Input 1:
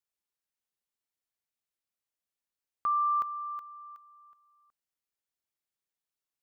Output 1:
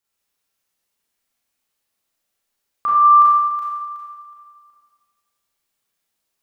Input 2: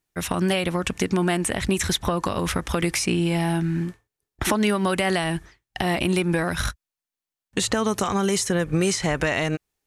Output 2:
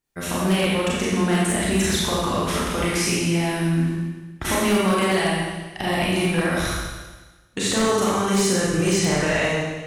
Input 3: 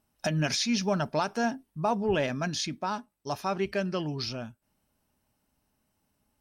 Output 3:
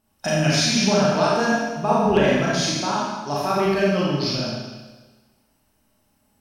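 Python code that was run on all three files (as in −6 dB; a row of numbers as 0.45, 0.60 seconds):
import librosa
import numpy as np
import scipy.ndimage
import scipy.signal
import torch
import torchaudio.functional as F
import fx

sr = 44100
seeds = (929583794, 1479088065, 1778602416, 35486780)

y = fx.rev_schroeder(x, sr, rt60_s=1.3, comb_ms=28, drr_db=-6.5)
y = 10.0 ** (-7.5 / 20.0) * (np.abs((y / 10.0 ** (-7.5 / 20.0) + 3.0) % 4.0 - 2.0) - 1.0)
y = y * 10.0 ** (-22 / 20.0) / np.sqrt(np.mean(np.square(y)))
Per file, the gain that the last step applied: +8.0, −4.5, +2.5 decibels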